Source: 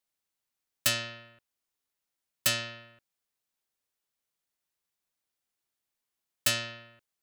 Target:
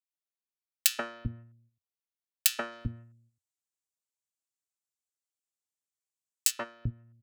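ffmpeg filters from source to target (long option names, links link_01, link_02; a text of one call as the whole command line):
ffmpeg -i in.wav -filter_complex "[0:a]asplit=3[link_01][link_02][link_03];[link_01]afade=type=out:start_time=2.71:duration=0.02[link_04];[link_02]equalizer=frequency=7500:width_type=o:width=0.8:gain=12,afade=type=in:start_time=2.71:duration=0.02,afade=type=out:start_time=6.5:duration=0.02[link_05];[link_03]afade=type=in:start_time=6.5:duration=0.02[link_06];[link_04][link_05][link_06]amix=inputs=3:normalize=0,agate=range=-9dB:threshold=-53dB:ratio=16:detection=peak,aeval=exprs='0.473*(cos(1*acos(clip(val(0)/0.473,-1,1)))-cos(1*PI/2))+0.0841*(cos(2*acos(clip(val(0)/0.473,-1,1)))-cos(2*PI/2))+0.00266*(cos(5*acos(clip(val(0)/0.473,-1,1)))-cos(5*PI/2))+0.00335*(cos(6*acos(clip(val(0)/0.473,-1,1)))-cos(6*PI/2))+0.0668*(cos(7*acos(clip(val(0)/0.473,-1,1)))-cos(7*PI/2))':channel_layout=same,acrossover=split=210|1700[link_07][link_08][link_09];[link_08]adelay=130[link_10];[link_07]adelay=390[link_11];[link_11][link_10][link_09]amix=inputs=3:normalize=0,acompressor=threshold=-46dB:ratio=12,highpass=47,equalizer=frequency=92:width_type=o:width=0.21:gain=5.5,alimiter=level_in=24.5dB:limit=-1dB:release=50:level=0:latency=1,volume=-1dB" out.wav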